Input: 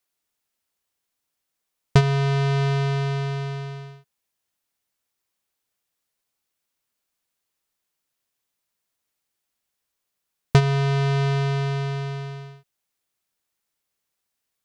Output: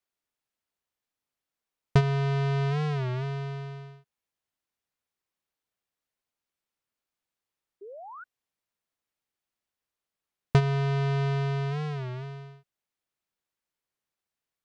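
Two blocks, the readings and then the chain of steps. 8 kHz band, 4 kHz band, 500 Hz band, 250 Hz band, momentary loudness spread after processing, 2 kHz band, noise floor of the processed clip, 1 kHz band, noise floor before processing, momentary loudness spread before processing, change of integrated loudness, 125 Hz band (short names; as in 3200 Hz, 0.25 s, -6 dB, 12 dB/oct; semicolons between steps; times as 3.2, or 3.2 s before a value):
n/a, -8.0 dB, -5.0 dB, -5.0 dB, 19 LU, -6.5 dB, under -85 dBFS, -5.0 dB, -81 dBFS, 14 LU, -5.0 dB, -5.0 dB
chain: high shelf 4500 Hz -8.5 dB; painted sound rise, 7.81–8.25, 380–1400 Hz -38 dBFS; record warp 33 1/3 rpm, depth 160 cents; gain -5 dB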